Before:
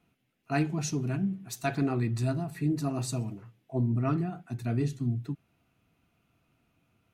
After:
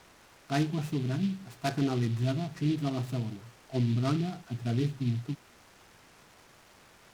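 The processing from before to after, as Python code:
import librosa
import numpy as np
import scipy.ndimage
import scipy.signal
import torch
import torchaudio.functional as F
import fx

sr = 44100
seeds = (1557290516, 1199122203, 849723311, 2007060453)

y = fx.quant_dither(x, sr, seeds[0], bits=8, dither='triangular')
y = fx.air_absorb(y, sr, metres=260.0)
y = fx.noise_mod_delay(y, sr, seeds[1], noise_hz=3000.0, depth_ms=0.058)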